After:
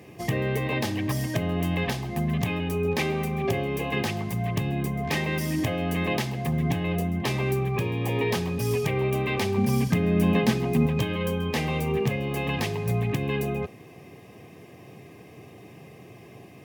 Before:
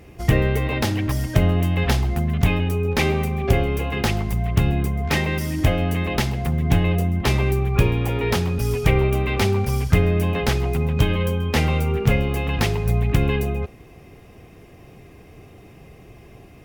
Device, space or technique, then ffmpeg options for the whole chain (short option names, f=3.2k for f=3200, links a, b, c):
PA system with an anti-feedback notch: -filter_complex "[0:a]highpass=f=110:w=0.5412,highpass=f=110:w=1.3066,asuperstop=centerf=1400:order=20:qfactor=7.3,alimiter=limit=-15.5dB:level=0:latency=1:release=447,asettb=1/sr,asplit=3[a][b][c];[a]atrim=end=9.574[d];[b]atrim=start=9.57:end=10.86,asetpts=PTS-STARTPTS,afade=t=in:d=0.004:c=qsin,afade=t=out:st=1.286:d=0.004:c=qsin,equalizer=f=220:w=2.7:g=13[e];[c]atrim=start=10.856[f];[d][e]acrossfade=d=0.004:c1=hsin:c2=qsin[g];[g][f]acrossfade=d=0.004:c1=qsin:c2=hsin"